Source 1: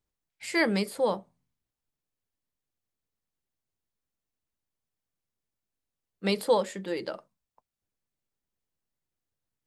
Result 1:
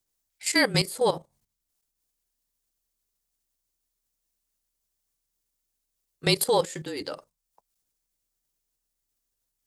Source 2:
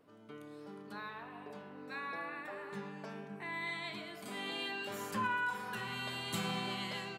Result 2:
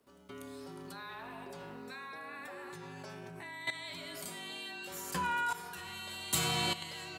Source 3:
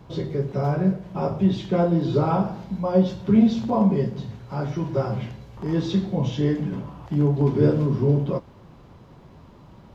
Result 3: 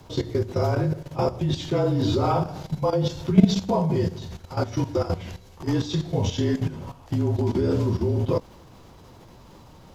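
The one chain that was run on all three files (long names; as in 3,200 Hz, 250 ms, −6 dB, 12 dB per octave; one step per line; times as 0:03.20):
frequency shifter −34 Hz
output level in coarse steps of 13 dB
bass and treble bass −3 dB, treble +11 dB
level +6 dB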